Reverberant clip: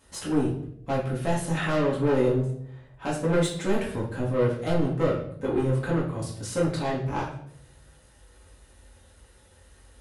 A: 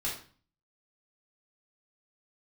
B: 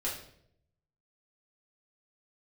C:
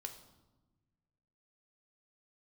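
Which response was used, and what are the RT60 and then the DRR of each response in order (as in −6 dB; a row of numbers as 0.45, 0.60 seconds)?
B; 0.40, 0.70, 1.1 seconds; −7.0, −6.5, 5.5 decibels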